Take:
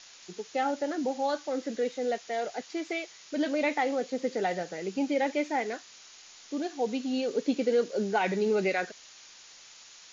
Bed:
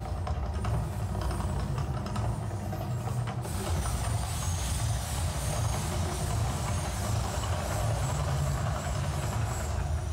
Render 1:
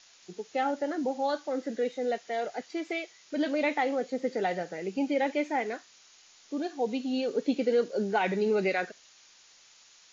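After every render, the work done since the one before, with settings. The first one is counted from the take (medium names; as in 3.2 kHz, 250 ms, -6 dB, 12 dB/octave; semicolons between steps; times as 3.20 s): noise print and reduce 6 dB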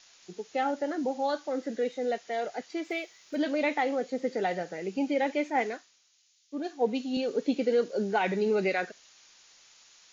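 2.84–3.36 s: companded quantiser 8-bit; 5.50–7.17 s: three bands expanded up and down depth 100%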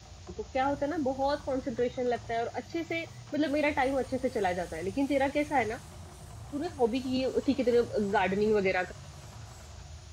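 add bed -16 dB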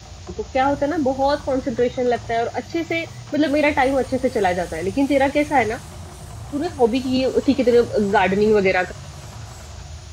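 trim +10.5 dB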